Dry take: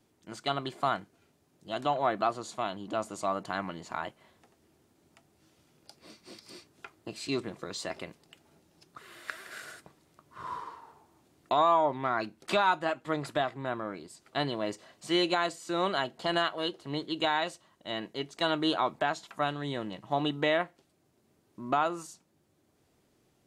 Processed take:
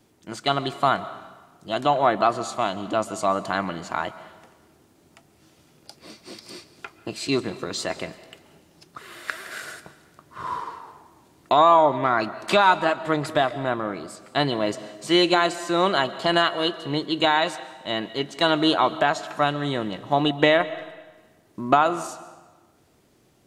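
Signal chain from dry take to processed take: 20.24–21.88 transient shaper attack +3 dB, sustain -4 dB; digital reverb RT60 1.3 s, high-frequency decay 0.9×, pre-delay 95 ms, DRR 15 dB; gain +8.5 dB

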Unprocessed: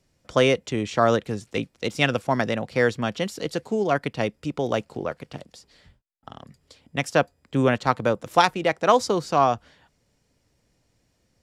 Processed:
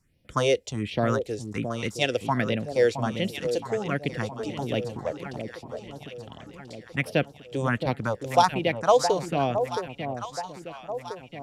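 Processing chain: phaser stages 4, 1.3 Hz, lowest notch 170–1300 Hz; echo with dull and thin repeats by turns 0.668 s, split 900 Hz, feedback 68%, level -7 dB

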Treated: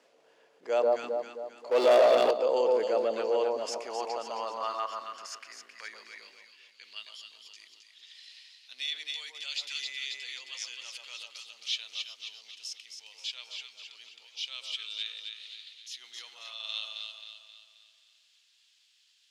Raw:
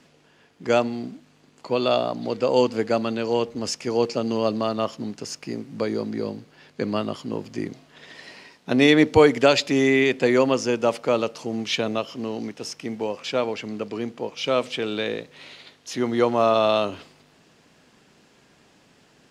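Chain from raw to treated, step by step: on a send: echo with dull and thin repeats by turns 0.133 s, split 1100 Hz, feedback 67%, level -2.5 dB; on the sum: limiter -12 dBFS, peak gain reduction 9 dB; 1.71–2.31 sample leveller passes 3; transient shaper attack -6 dB, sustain -1 dB; high-pass sweep 520 Hz -> 3500 Hz, 3.35–7.21; gain -8.5 dB

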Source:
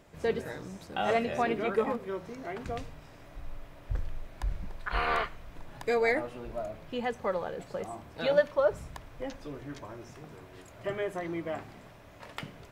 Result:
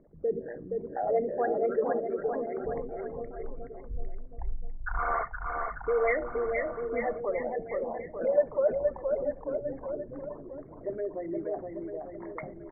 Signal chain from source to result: formant sharpening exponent 3; Chebyshev low-pass 2200 Hz, order 8; bell 94 Hz -11.5 dB 0.62 oct; bouncing-ball echo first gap 0.47 s, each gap 0.9×, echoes 5; on a send at -18 dB: reverb RT60 0.40 s, pre-delay 4 ms

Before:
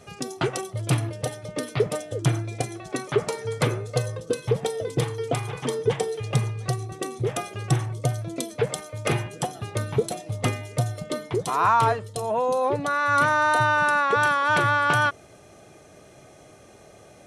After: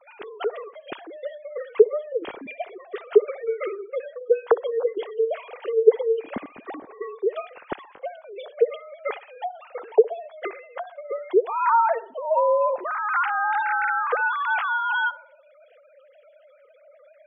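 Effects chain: sine-wave speech; narrowing echo 62 ms, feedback 48%, band-pass 970 Hz, level -16.5 dB; spectral gate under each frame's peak -30 dB strong

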